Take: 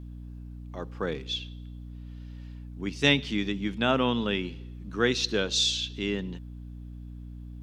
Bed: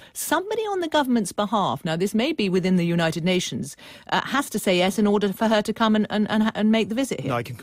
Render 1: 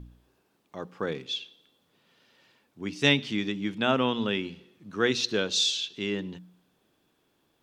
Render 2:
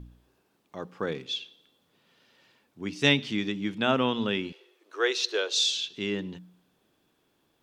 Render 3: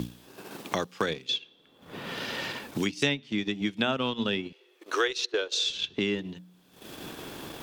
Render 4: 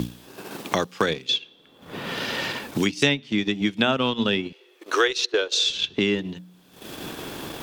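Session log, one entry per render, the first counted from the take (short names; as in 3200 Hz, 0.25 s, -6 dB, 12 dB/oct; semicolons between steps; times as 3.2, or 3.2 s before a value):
de-hum 60 Hz, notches 5
4.52–5.7 steep high-pass 360 Hz 48 dB/oct
transient shaper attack +2 dB, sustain -11 dB; three-band squash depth 100%
gain +6 dB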